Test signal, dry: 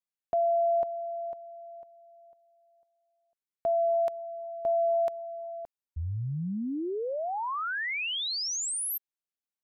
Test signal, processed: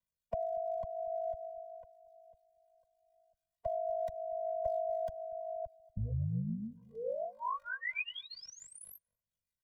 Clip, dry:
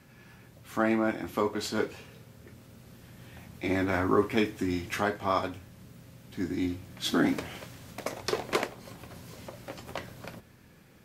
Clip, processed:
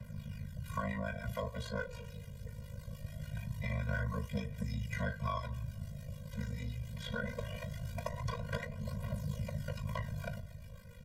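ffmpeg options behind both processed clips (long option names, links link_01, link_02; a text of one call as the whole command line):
ffmpeg -i in.wav -filter_complex "[0:a]acrossover=split=820[link_01][link_02];[link_01]aeval=exprs='val(0)*(1-0.5/2+0.5/2*cos(2*PI*6.9*n/s))':channel_layout=same[link_03];[link_02]aeval=exprs='val(0)*(1-0.5/2-0.5/2*cos(2*PI*6.9*n/s))':channel_layout=same[link_04];[link_03][link_04]amix=inputs=2:normalize=0,acrossover=split=110|1100[link_05][link_06][link_07];[link_05]aeval=exprs='0.0237*sin(PI/2*2.51*val(0)/0.0237)':channel_layout=same[link_08];[link_08][link_06][link_07]amix=inputs=3:normalize=0,aphaser=in_gain=1:out_gain=1:delay=2.5:decay=0.51:speed=0.22:type=triangular,aeval=exprs='val(0)*sin(2*PI*26*n/s)':channel_layout=same,acrossover=split=81|2400[link_09][link_10][link_11];[link_09]acompressor=threshold=-51dB:ratio=4[link_12];[link_10]acompressor=threshold=-39dB:ratio=4[link_13];[link_11]acompressor=threshold=-58dB:ratio=4[link_14];[link_12][link_13][link_14]amix=inputs=3:normalize=0,asplit=2[link_15][link_16];[link_16]adelay=236,lowpass=frequency=960:poles=1,volume=-21dB,asplit=2[link_17][link_18];[link_18]adelay=236,lowpass=frequency=960:poles=1,volume=0.4,asplit=2[link_19][link_20];[link_20]adelay=236,lowpass=frequency=960:poles=1,volume=0.4[link_21];[link_15][link_17][link_19][link_21]amix=inputs=4:normalize=0,afftfilt=real='re*eq(mod(floor(b*sr/1024/230),2),0)':imag='im*eq(mod(floor(b*sr/1024/230),2),0)':win_size=1024:overlap=0.75,volume=6dB" out.wav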